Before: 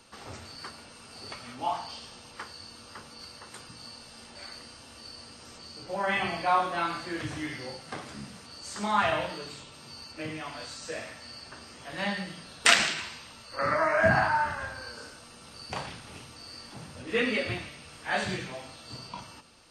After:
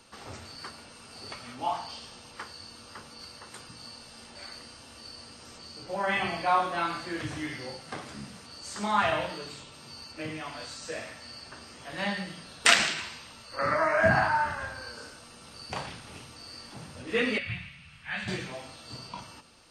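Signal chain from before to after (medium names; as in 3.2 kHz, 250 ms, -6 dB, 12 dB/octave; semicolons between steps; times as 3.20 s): 17.38–18.28 s: FFT filter 180 Hz 0 dB, 340 Hz -24 dB, 2.5 kHz +1 dB, 5.3 kHz -13 dB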